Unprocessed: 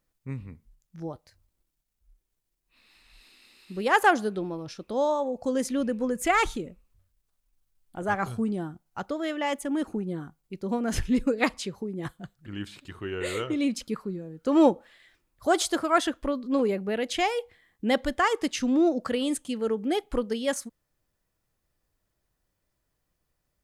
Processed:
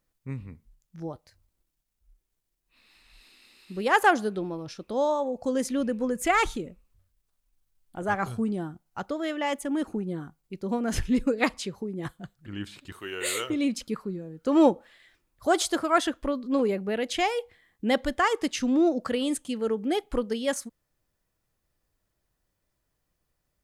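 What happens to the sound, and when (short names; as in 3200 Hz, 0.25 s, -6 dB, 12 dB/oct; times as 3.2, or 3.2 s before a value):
12.92–13.5 RIAA curve recording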